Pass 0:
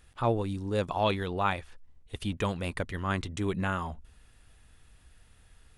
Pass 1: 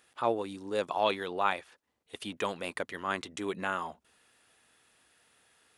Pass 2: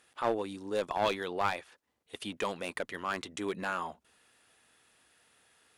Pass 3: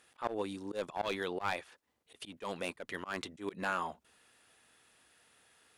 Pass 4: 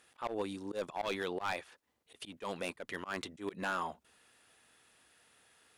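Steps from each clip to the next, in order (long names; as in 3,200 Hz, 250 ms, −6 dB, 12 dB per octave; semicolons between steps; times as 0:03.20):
high-pass filter 330 Hz 12 dB per octave
asymmetric clip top −26 dBFS
volume swells 133 ms
hard clipping −28 dBFS, distortion −15 dB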